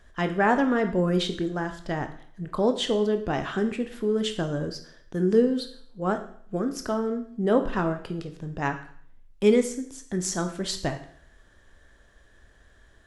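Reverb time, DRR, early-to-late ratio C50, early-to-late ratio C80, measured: 0.60 s, 7.0 dB, 11.0 dB, 14.5 dB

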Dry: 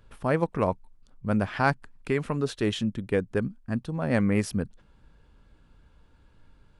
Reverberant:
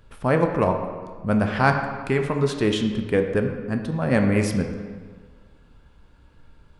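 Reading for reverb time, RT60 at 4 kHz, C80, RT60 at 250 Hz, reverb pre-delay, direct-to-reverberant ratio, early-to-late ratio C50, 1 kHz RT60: 1.6 s, 1.1 s, 7.5 dB, 1.6 s, 10 ms, 4.0 dB, 6.0 dB, 1.7 s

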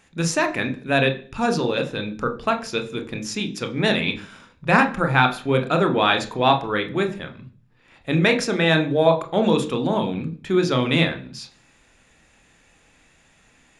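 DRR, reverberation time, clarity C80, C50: 6.0 dB, 0.40 s, 18.5 dB, 13.5 dB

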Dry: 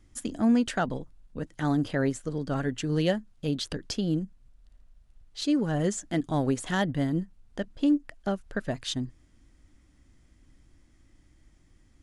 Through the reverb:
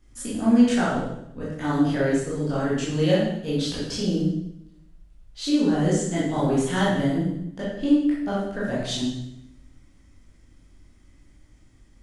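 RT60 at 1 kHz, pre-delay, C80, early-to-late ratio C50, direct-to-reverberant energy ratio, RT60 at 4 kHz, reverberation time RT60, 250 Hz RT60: 0.75 s, 15 ms, 4.0 dB, 0.0 dB, -8.5 dB, 0.75 s, 0.80 s, 1.0 s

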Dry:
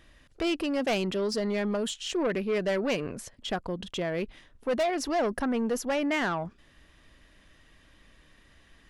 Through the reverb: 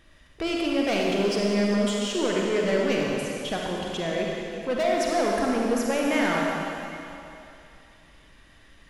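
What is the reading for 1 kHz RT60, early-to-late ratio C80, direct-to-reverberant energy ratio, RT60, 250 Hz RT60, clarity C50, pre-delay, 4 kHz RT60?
2.9 s, -0.5 dB, -2.5 dB, 2.9 s, 2.6 s, -2.0 dB, 39 ms, 2.8 s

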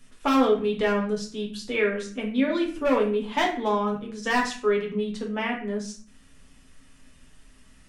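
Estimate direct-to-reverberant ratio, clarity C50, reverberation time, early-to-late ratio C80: -2.0 dB, 8.0 dB, 0.45 s, 12.5 dB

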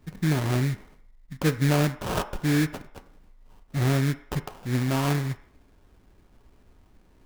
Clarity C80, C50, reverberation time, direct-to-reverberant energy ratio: 16.5 dB, 14.0 dB, 0.65 s, 7.5 dB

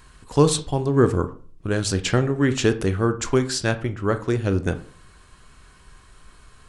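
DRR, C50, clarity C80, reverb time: 9.5 dB, 14.5 dB, 19.5 dB, 0.45 s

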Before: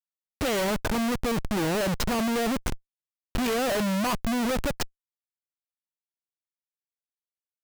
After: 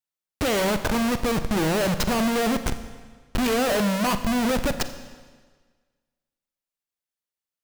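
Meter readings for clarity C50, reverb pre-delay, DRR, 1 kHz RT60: 11.0 dB, 36 ms, 9.5 dB, 1.5 s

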